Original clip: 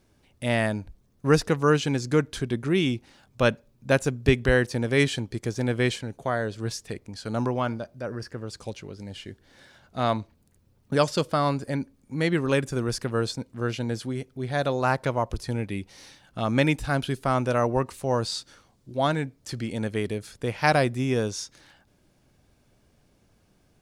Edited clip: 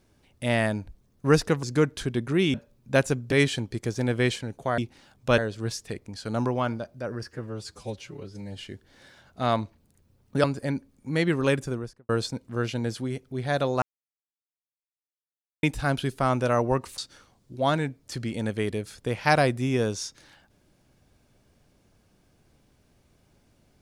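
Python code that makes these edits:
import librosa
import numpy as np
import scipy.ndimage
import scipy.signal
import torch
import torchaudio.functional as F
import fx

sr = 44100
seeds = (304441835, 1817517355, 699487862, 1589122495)

y = fx.studio_fade_out(x, sr, start_s=12.58, length_s=0.56)
y = fx.edit(y, sr, fx.cut(start_s=1.63, length_s=0.36),
    fx.move(start_s=2.9, length_s=0.6, to_s=6.38),
    fx.cut(start_s=4.28, length_s=0.64),
    fx.stretch_span(start_s=8.28, length_s=0.86, factor=1.5),
    fx.cut(start_s=11.01, length_s=0.48),
    fx.silence(start_s=14.87, length_s=1.81),
    fx.cut(start_s=18.03, length_s=0.32), tone=tone)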